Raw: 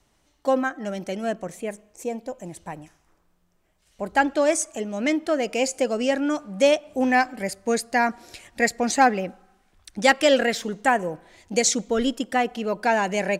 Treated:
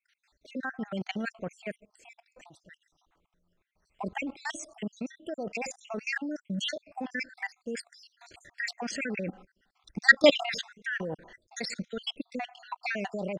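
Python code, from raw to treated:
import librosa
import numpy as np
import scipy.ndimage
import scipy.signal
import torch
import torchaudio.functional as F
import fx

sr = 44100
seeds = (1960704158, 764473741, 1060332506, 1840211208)

y = fx.spec_dropout(x, sr, seeds[0], share_pct=63)
y = fx.level_steps(y, sr, step_db=19)
y = fx.dynamic_eq(y, sr, hz=190.0, q=1.3, threshold_db=-50.0, ratio=4.0, max_db=4)
y = scipy.signal.sosfilt(scipy.signal.butter(2, 3100.0, 'lowpass', fs=sr, output='sos'), y)
y = fx.high_shelf(y, sr, hz=2400.0, db=11.0)
y = y * 10.0 ** (3.0 / 20.0)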